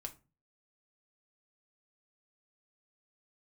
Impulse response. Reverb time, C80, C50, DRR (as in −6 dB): 0.30 s, 23.5 dB, 16.5 dB, 4.0 dB